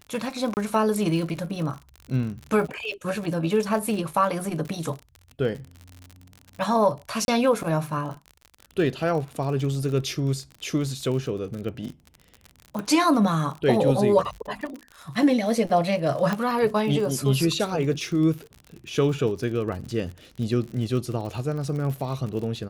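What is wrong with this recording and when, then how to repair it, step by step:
crackle 55 per s -32 dBFS
0.54–0.57 s: dropout 29 ms
7.25–7.28 s: dropout 31 ms
12.79 s: pop -19 dBFS
16.33 s: pop -13 dBFS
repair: de-click; interpolate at 0.54 s, 29 ms; interpolate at 7.25 s, 31 ms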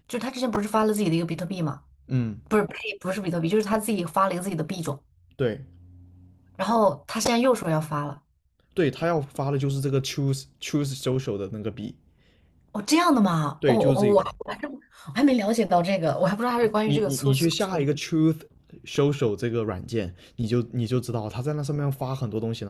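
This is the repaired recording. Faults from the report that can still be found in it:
nothing left

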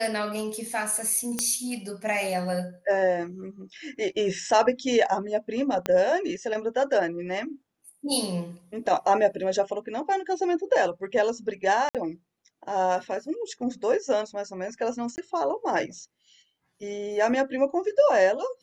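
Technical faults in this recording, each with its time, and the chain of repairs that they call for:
1.39 s: pop -10 dBFS
5.86 s: pop -12 dBFS
11.89–11.95 s: dropout 57 ms
15.16–15.18 s: dropout 19 ms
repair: de-click; interpolate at 11.89 s, 57 ms; interpolate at 15.16 s, 19 ms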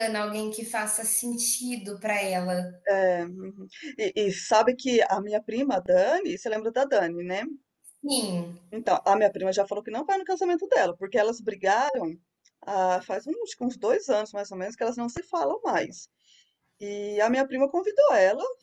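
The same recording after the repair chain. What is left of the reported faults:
5.86 s: pop

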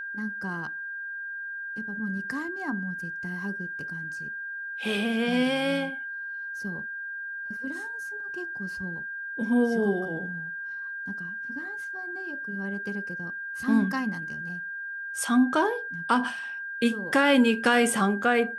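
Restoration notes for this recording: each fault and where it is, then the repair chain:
whine 1.6 kHz -33 dBFS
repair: band-stop 1.6 kHz, Q 30

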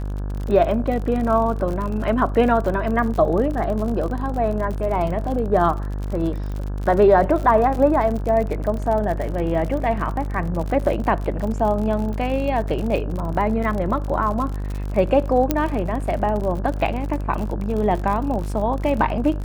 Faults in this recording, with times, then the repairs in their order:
buzz 50 Hz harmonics 34 -26 dBFS
crackle 58 per s -27 dBFS
15.51 s: pop -4 dBFS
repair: de-click; de-hum 50 Hz, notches 34

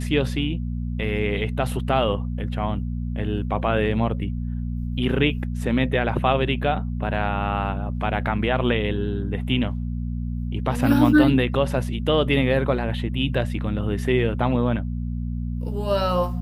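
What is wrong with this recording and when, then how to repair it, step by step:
hum 60 Hz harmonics 4 -27 dBFS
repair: de-hum 60 Hz, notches 4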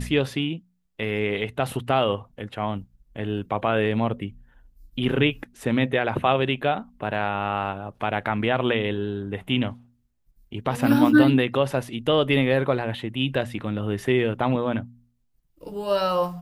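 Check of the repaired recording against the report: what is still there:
nothing left

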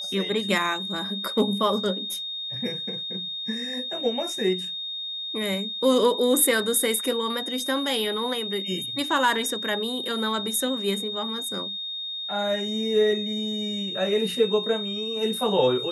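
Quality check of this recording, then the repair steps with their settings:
whine 3.7 kHz -30 dBFS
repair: band-stop 3.7 kHz, Q 30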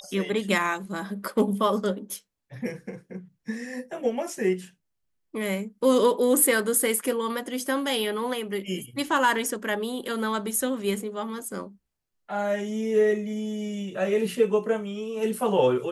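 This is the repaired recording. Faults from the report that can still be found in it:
nothing left

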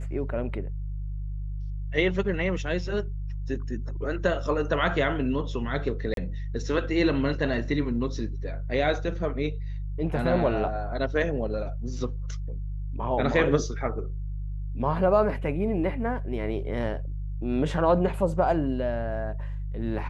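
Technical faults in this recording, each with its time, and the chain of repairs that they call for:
hum 50 Hz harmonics 3 -32 dBFS
6.14–6.17 s: dropout 32 ms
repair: de-hum 50 Hz, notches 3; interpolate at 6.14 s, 32 ms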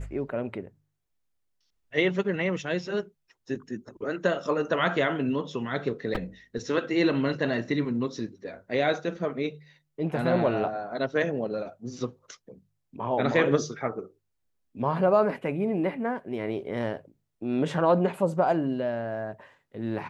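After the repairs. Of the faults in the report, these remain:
nothing left

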